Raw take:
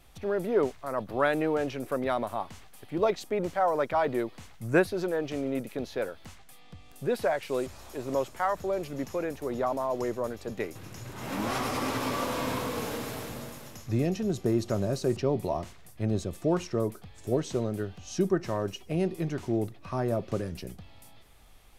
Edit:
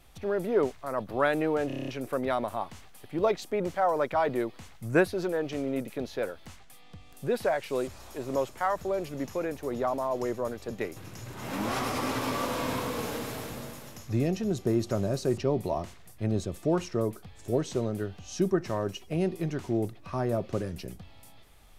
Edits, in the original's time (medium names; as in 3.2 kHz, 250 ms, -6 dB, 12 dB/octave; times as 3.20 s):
1.67 s: stutter 0.03 s, 8 plays